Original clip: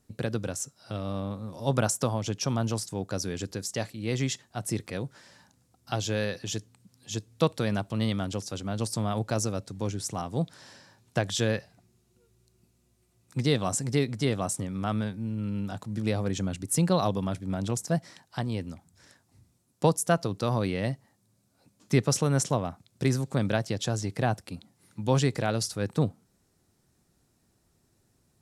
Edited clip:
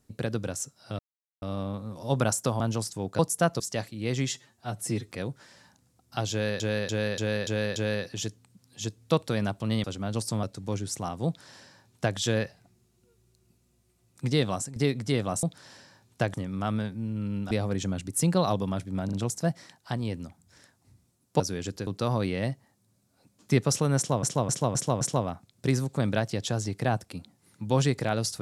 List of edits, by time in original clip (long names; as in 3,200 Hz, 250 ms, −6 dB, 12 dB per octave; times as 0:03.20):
0:00.99: splice in silence 0.43 s
0:02.17–0:02.56: remove
0:03.15–0:03.62: swap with 0:19.87–0:20.28
0:04.31–0:04.85: time-stretch 1.5×
0:06.06–0:06.35: repeat, 6 plays
0:08.14–0:08.49: remove
0:09.08–0:09.56: remove
0:10.39–0:11.30: duplicate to 0:14.56
0:13.62–0:13.89: fade out, to −13.5 dB
0:15.73–0:16.06: remove
0:17.60: stutter 0.04 s, 3 plays
0:22.38–0:22.64: repeat, 5 plays